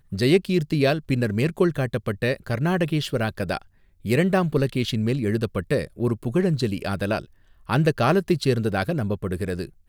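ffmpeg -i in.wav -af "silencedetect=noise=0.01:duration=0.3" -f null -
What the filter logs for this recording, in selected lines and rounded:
silence_start: 3.62
silence_end: 4.05 | silence_duration: 0.43
silence_start: 7.25
silence_end: 7.69 | silence_duration: 0.44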